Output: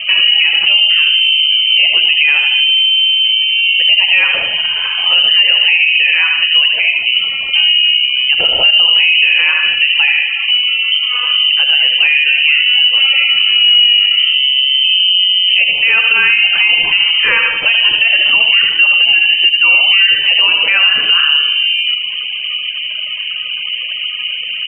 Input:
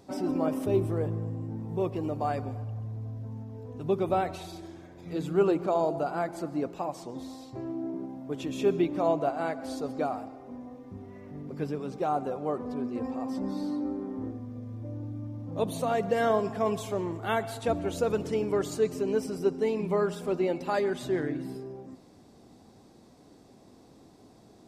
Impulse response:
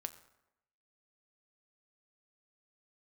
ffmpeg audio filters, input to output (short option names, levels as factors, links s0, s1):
-filter_complex "[0:a]aemphasis=mode=production:type=75fm,aecho=1:1:75|150|225|300:0.398|0.131|0.0434|0.0143[s0];[1:a]atrim=start_sample=2205,afade=t=out:st=0.22:d=0.01,atrim=end_sample=10143[s1];[s0][s1]afir=irnorm=-1:irlink=0,acompressor=threshold=0.00282:ratio=2.5,asettb=1/sr,asplit=3[s2][s3][s4];[s2]atrim=end=8.734[s5];[s3]atrim=start=8.73:end=9.52,asetpts=PTS-STARTPTS,afade=t=in:d=0.004:c=qsin,afade=t=out:st=0.786:d=0.004:c=qsin,lowshelf=f=370:g=7.5[s6];[s4]atrim=start=9.516[s7];[s5][s6]acrossfade=d=0.004:c1=hsin:c2=qsin[s8];[s8][s7]acrossfade=d=0.004:c1=qsin:c2=hsin,acontrast=88,afftfilt=real='re*gte(hypot(re,im),0.00158)':imag='im*gte(hypot(re,im),0.00158)':win_size=1024:overlap=0.75,lowpass=f=2700:t=q:w=0.5098,lowpass=f=2700:t=q:w=0.6013,lowpass=f=2700:t=q:w=0.9,lowpass=f=2700:t=q:w=2.563,afreqshift=-3200,alimiter=level_in=39.8:limit=0.891:release=50:level=0:latency=1,volume=0.891"